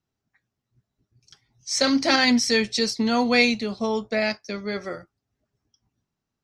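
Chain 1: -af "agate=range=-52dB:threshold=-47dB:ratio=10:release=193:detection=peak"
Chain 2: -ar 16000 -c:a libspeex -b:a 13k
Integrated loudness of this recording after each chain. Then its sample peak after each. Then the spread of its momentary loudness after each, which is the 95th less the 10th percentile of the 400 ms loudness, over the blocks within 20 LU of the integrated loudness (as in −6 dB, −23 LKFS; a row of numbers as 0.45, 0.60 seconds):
−22.0, −22.5 LKFS; −7.0, −6.0 dBFS; 13, 13 LU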